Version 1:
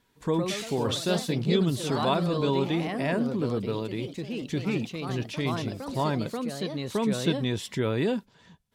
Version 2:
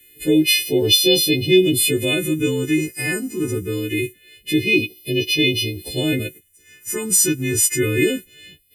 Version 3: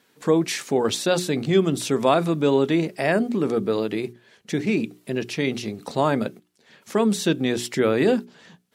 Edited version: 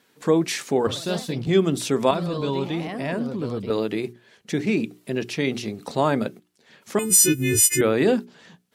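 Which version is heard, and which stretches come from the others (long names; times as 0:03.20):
3
0:00.87–0:01.47: punch in from 1
0:02.11–0:03.70: punch in from 1
0:06.99–0:07.81: punch in from 2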